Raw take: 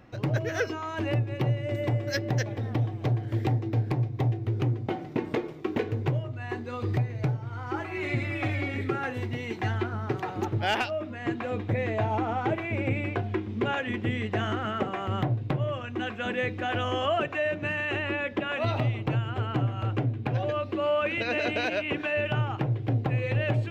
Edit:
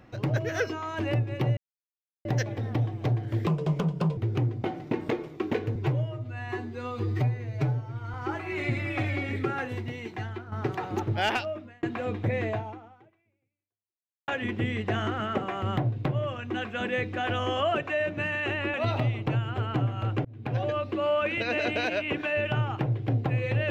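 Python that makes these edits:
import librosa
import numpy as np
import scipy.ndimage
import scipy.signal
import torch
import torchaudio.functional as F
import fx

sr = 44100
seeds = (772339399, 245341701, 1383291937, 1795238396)

y = fx.edit(x, sr, fx.silence(start_s=1.57, length_s=0.68),
    fx.speed_span(start_s=3.47, length_s=0.95, speed=1.35),
    fx.stretch_span(start_s=6.0, length_s=1.59, factor=1.5),
    fx.fade_out_to(start_s=9.0, length_s=0.97, floor_db=-11.5),
    fx.fade_out_span(start_s=10.86, length_s=0.42),
    fx.fade_out_span(start_s=11.94, length_s=1.79, curve='exp'),
    fx.cut(start_s=18.19, length_s=0.35),
    fx.fade_in_span(start_s=20.05, length_s=0.33), tone=tone)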